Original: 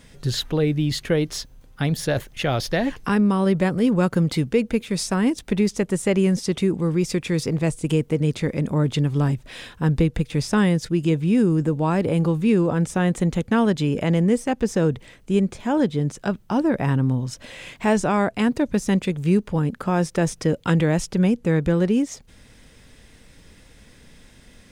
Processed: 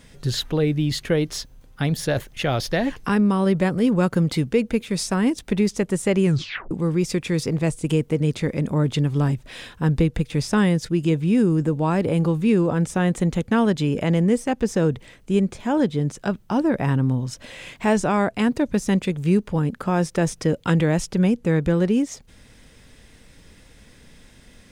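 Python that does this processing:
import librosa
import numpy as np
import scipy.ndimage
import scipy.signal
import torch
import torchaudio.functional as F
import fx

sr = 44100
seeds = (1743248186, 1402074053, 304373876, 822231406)

y = fx.edit(x, sr, fx.tape_stop(start_s=6.25, length_s=0.46), tone=tone)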